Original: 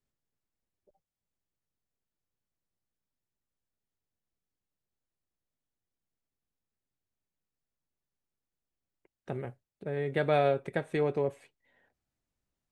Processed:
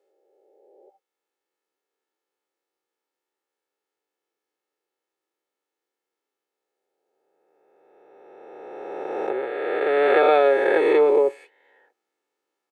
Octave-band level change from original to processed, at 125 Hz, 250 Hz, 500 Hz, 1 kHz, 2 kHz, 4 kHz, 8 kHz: under -15 dB, +7.5 dB, +12.5 dB, +12.0 dB, +13.0 dB, +9.5 dB, n/a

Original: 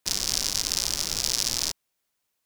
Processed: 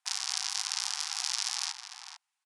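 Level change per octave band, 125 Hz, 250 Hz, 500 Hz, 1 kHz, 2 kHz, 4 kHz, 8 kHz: under -40 dB, under -40 dB, under -20 dB, -0.5 dB, -2.0 dB, -6.0 dB, -7.0 dB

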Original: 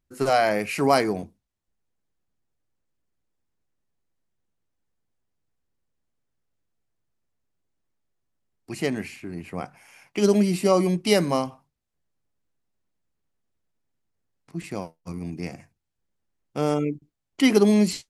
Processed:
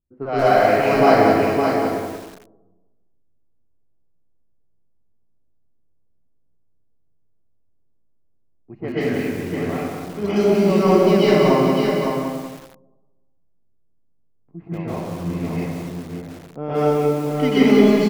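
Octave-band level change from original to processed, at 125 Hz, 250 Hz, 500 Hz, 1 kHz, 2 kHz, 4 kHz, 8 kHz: +6.5, +6.0, +7.5, +8.0, +6.0, +2.5, -3.5 dB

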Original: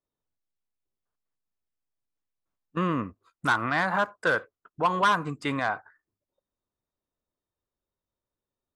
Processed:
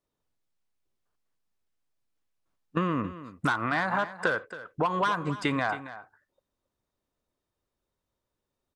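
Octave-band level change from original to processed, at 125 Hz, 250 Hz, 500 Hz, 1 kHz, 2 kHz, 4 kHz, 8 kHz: +0.5, +0.5, -1.0, -3.0, -2.5, -3.0, -3.5 dB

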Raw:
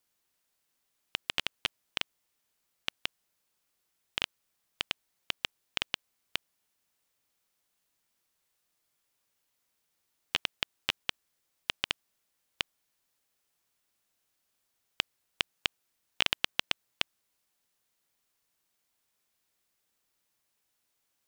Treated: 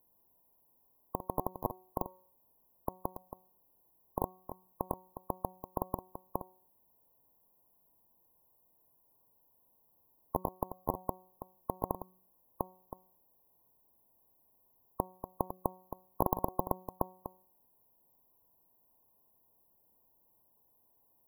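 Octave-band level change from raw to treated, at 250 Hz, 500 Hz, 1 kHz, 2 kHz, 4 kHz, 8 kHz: +10.5 dB, +10.5 dB, +8.0 dB, under -40 dB, under -40 dB, -9.0 dB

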